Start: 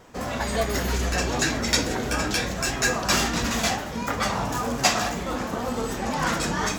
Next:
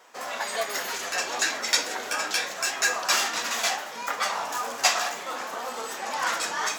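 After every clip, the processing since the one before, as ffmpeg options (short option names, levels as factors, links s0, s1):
-af "highpass=710"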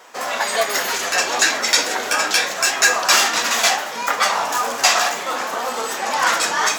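-af "alimiter=level_in=3.35:limit=0.891:release=50:level=0:latency=1,volume=0.891"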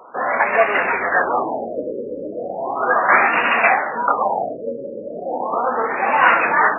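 -af "afftfilt=real='re*lt(b*sr/1024,570*pow(2900/570,0.5+0.5*sin(2*PI*0.36*pts/sr)))':imag='im*lt(b*sr/1024,570*pow(2900/570,0.5+0.5*sin(2*PI*0.36*pts/sr)))':win_size=1024:overlap=0.75,volume=1.78"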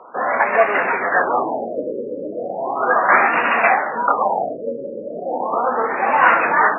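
-af "highpass=110,lowpass=2200,volume=1.12"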